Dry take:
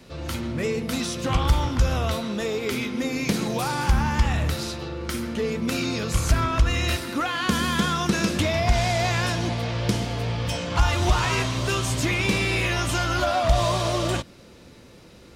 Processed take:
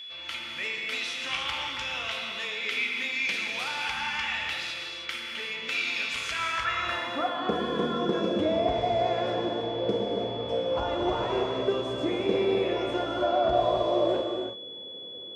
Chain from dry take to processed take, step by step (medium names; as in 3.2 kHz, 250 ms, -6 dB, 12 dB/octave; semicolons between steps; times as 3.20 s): band-pass sweep 2.5 kHz -> 470 Hz, 6.36–7.46 s; gated-style reverb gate 360 ms flat, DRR 1 dB; whistle 3.4 kHz -43 dBFS; trim +4 dB